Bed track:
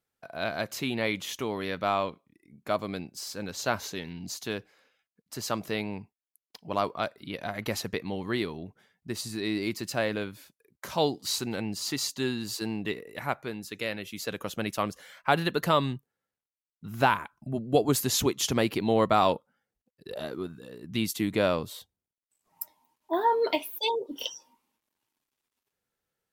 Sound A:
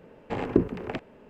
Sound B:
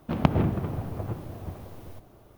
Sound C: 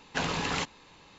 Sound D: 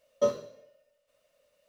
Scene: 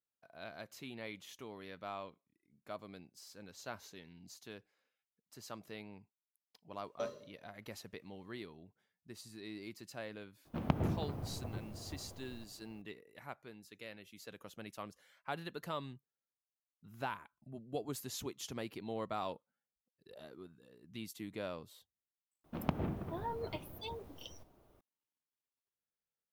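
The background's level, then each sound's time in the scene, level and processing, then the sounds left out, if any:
bed track -17 dB
6.78 add D -11 dB + limiter -18.5 dBFS
10.45 add B -10.5 dB
22.44 add B -12 dB + bell 110 Hz -5 dB
not used: A, C

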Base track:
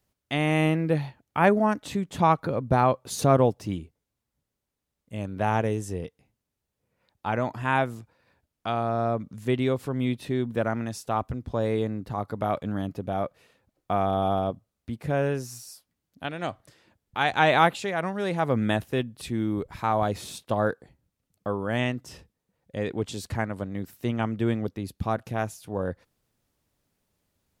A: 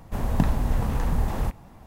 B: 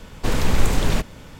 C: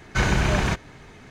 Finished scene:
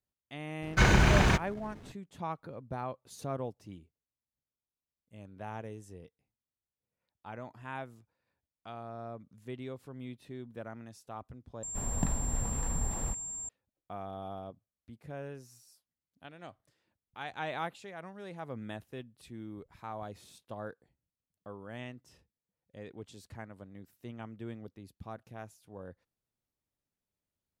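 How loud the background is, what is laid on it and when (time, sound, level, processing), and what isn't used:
base track -17 dB
0.62 add C -1.5 dB + backlash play -40.5 dBFS
11.63 replace with A -10 dB + whine 7400 Hz -27 dBFS
not used: B

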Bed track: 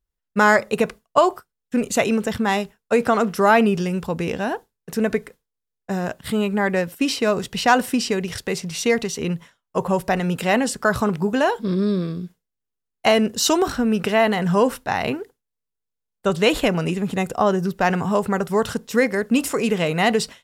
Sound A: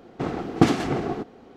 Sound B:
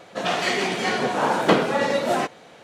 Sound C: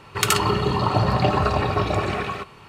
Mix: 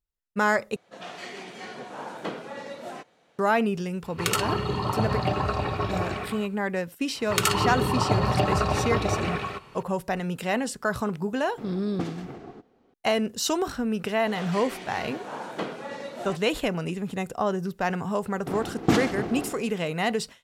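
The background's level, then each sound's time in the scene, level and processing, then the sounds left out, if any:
bed track -7.5 dB
0.76 replace with B -16 dB
4.03 add C -6 dB + ending faded out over 0.58 s
7.15 add C -3.5 dB
11.38 add A -15 dB
14.1 add B -14.5 dB
18.27 add A -5.5 dB + sustainer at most 81 dB/s

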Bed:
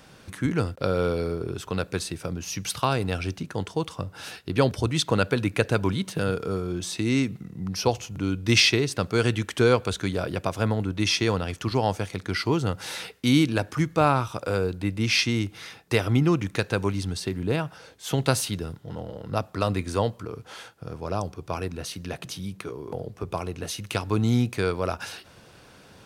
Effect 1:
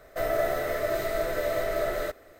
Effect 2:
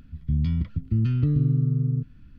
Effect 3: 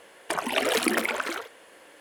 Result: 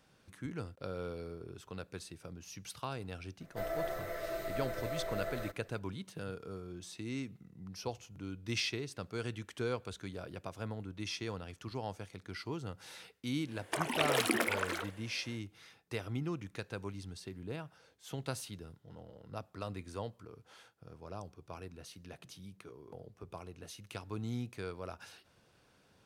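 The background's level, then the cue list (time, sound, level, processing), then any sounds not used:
bed -16.5 dB
3.4 add 1 -12 dB + comb 5.9 ms, depth 47%
13.43 add 3 -6.5 dB, fades 0.10 s
not used: 2

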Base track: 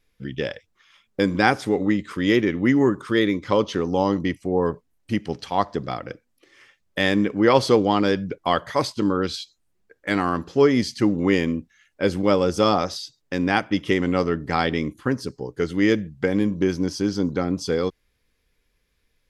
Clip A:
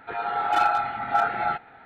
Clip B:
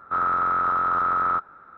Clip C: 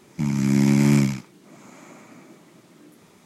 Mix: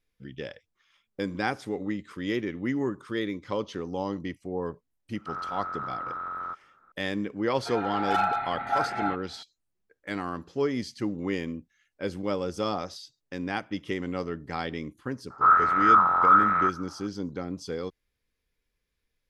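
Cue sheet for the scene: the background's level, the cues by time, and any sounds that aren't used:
base track -10.5 dB
5.15 add B -12.5 dB
7.58 add A -4 dB
15.3 add B -4.5 dB + LFO bell 1.2 Hz 820–2200 Hz +13 dB
not used: C

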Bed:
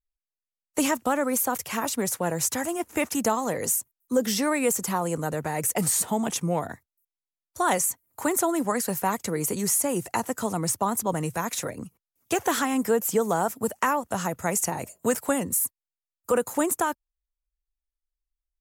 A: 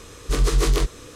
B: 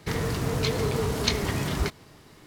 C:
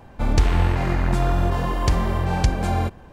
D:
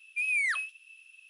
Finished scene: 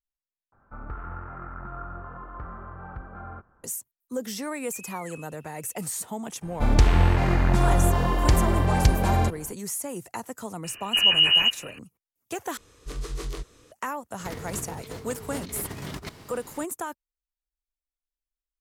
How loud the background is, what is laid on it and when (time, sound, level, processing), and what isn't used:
bed -8 dB
0.52 replace with C -7.5 dB + ladder low-pass 1400 Hz, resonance 85%
4.57 add D -7 dB + compressor, threshold -38 dBFS
6.41 add C, fades 0.02 s
10.64 add A -3 dB + inverted band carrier 2900 Hz
12.57 replace with A -14 dB
14.19 add B -3.5 dB + negative-ratio compressor -32 dBFS, ratio -0.5

